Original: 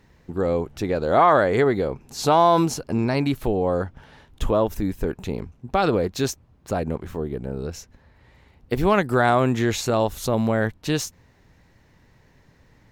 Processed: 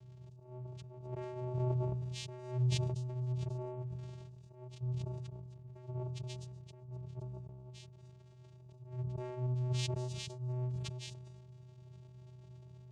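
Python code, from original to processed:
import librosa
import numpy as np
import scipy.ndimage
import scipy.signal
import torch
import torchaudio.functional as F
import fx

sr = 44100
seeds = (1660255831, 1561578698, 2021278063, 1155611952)

y = x + 0.5 * 10.0 ** (-31.5 / 20.0) * np.sign(x)
y = fx.hum_notches(y, sr, base_hz=60, count=8)
y = fx.cheby_harmonics(y, sr, harmonics=(3, 5), levels_db=(-12, -41), full_scale_db=-4.5)
y = fx.peak_eq(y, sr, hz=1500.0, db=-10.0, octaves=2.3)
y = fx.over_compress(y, sr, threshold_db=-27.0, ratio=-1.0)
y = fx.auto_swell(y, sr, attack_ms=548.0)
y = fx.dynamic_eq(y, sr, hz=170.0, q=1.2, threshold_db=-47.0, ratio=4.0, max_db=5)
y = fx.fixed_phaser(y, sr, hz=320.0, stages=6)
y = fx.vocoder(y, sr, bands=4, carrier='square', carrier_hz=125.0)
y = fx.echo_wet_highpass(y, sr, ms=255, feedback_pct=43, hz=5500.0, wet_db=-8.0)
y = fx.sustainer(y, sr, db_per_s=26.0)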